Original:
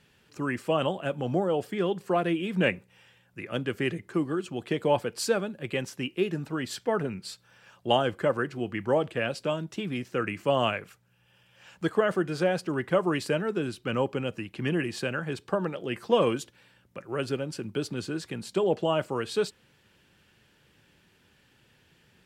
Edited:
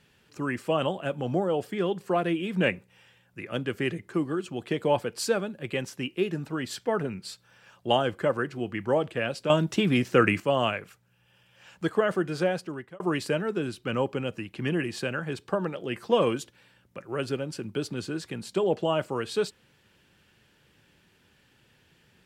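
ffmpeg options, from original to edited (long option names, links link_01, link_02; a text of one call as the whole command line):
ffmpeg -i in.wav -filter_complex "[0:a]asplit=4[link_01][link_02][link_03][link_04];[link_01]atrim=end=9.502[link_05];[link_02]atrim=start=9.498:end=10.402,asetpts=PTS-STARTPTS,volume=9dB[link_06];[link_03]atrim=start=10.398:end=13,asetpts=PTS-STARTPTS,afade=type=out:start_time=2.042:duration=0.56[link_07];[link_04]atrim=start=13,asetpts=PTS-STARTPTS,afade=type=in:duration=0.004:curve=hsin[link_08];[link_05][link_06]acrossfade=duration=0.004:curve1=hsin:curve2=hsin[link_09];[link_07][link_08]concat=n=2:v=0:a=1[link_10];[link_09][link_10]acrossfade=duration=0.004:curve1=hsin:curve2=hsin" out.wav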